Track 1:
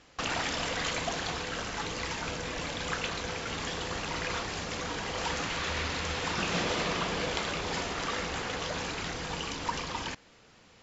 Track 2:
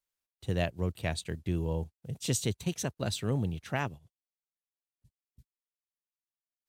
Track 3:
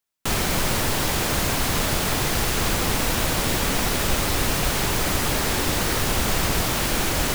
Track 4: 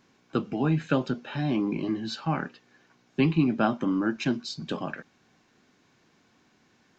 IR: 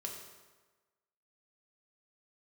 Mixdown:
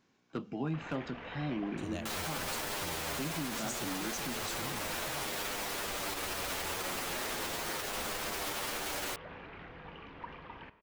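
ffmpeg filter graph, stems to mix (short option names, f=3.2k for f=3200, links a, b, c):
-filter_complex "[0:a]lowpass=f=2.6k:w=0.5412,lowpass=f=2.6k:w=1.3066,adelay=550,volume=-14dB,asplit=2[a][b];[b]volume=-7dB[c];[1:a]equalizer=f=6.7k:t=o:w=1:g=14.5,adelay=1350,volume=-11dB[d];[2:a]alimiter=limit=-18.5dB:level=0:latency=1,bass=f=250:g=-15,treble=f=4k:g=-2,asplit=2[e][f];[f]adelay=9.1,afreqshift=-0.36[g];[e][g]amix=inputs=2:normalize=1,adelay=1800,volume=1dB[h];[3:a]asoftclip=type=hard:threshold=-16.5dB,volume=-8.5dB[i];[4:a]atrim=start_sample=2205[j];[c][j]afir=irnorm=-1:irlink=0[k];[a][d][h][i][k]amix=inputs=5:normalize=0,alimiter=level_in=3dB:limit=-24dB:level=0:latency=1:release=119,volume=-3dB"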